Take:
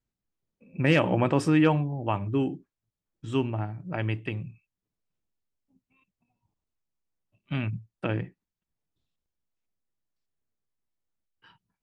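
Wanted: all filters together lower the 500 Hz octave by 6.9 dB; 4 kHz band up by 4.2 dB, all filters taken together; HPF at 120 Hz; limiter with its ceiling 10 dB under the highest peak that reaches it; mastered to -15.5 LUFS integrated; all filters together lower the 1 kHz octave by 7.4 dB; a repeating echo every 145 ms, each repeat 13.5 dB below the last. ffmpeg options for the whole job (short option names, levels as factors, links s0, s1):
-af "highpass=120,equalizer=f=500:t=o:g=-7,equalizer=f=1000:t=o:g=-7.5,equalizer=f=4000:t=o:g=7.5,alimiter=limit=0.119:level=0:latency=1,aecho=1:1:145|290:0.211|0.0444,volume=7.08"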